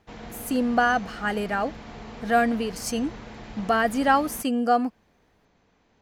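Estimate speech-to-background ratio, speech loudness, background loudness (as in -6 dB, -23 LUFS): 16.5 dB, -24.5 LUFS, -41.0 LUFS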